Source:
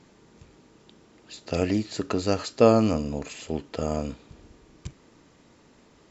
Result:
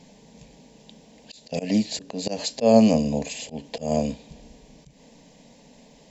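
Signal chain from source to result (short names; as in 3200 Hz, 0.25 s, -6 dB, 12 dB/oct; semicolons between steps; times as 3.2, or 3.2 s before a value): fixed phaser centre 350 Hz, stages 6; auto swell 0.164 s; gain +8 dB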